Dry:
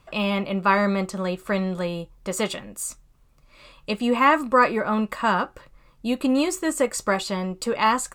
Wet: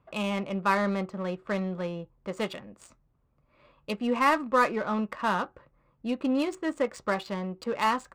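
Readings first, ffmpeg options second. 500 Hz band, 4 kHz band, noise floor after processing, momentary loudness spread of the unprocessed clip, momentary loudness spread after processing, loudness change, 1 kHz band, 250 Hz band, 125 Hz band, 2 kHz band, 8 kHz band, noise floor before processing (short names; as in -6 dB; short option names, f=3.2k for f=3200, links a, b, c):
-5.5 dB, -7.5 dB, -69 dBFS, 12 LU, 12 LU, -5.5 dB, -5.5 dB, -5.5 dB, -5.5 dB, -6.0 dB, -16.5 dB, -57 dBFS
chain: -af "highpass=64,adynamicsmooth=sensitivity=3:basefreq=1.6k,volume=-5.5dB"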